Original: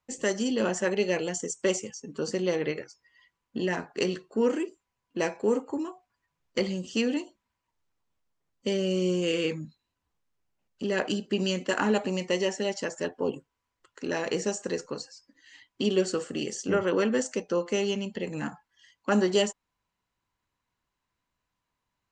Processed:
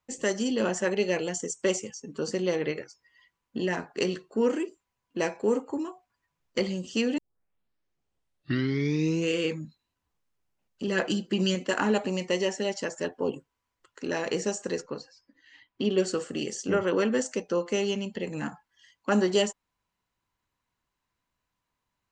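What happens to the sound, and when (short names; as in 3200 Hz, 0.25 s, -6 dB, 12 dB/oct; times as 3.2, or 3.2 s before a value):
7.18 tape start 2.16 s
10.87–11.55 comb 5.9 ms, depth 58%
14.82–15.98 air absorption 160 m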